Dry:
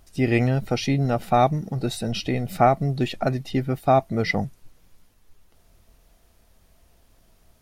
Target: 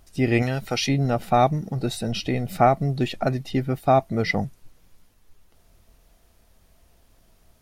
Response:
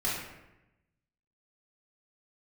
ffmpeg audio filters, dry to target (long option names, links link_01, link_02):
-filter_complex "[0:a]asettb=1/sr,asplit=3[link_01][link_02][link_03];[link_01]atrim=end=0.424[link_04];[link_02]atrim=start=0.42:end=0.89,asetpts=PTS-STARTPTS,afade=type=in:duration=0.004:curve=qsin,afade=type=out:start_time=0.466:duration=0.004:curve=qsin,tiltshelf=frequency=820:gain=-5.5[link_05];[link_03]atrim=start=0.886[link_06];[link_04][link_05]acrossfade=duration=0.004:curve1=hsin:curve2=qsin[link_07];[link_07][link_06]acrossfade=duration=0.004:curve1=qsin:curve2=hsin"